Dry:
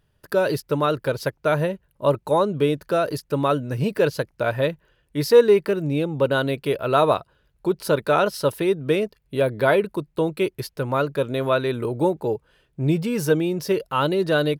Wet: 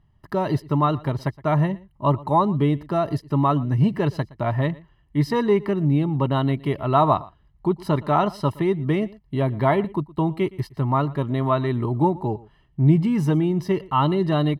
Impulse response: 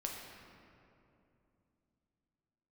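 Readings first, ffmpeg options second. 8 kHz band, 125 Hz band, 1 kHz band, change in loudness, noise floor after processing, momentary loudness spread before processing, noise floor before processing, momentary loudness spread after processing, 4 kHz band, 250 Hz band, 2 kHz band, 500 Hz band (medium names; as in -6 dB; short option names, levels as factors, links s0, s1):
under -10 dB, +6.5 dB, +2.5 dB, 0.0 dB, -59 dBFS, 7 LU, -67 dBFS, 7 LU, -5.5 dB, +3.5 dB, -7.0 dB, -5.0 dB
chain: -filter_complex "[0:a]lowpass=f=1100:p=1,aecho=1:1:1:0.86,asplit=2[s0][s1];[s1]aecho=0:1:117:0.0841[s2];[s0][s2]amix=inputs=2:normalize=0,volume=1.26"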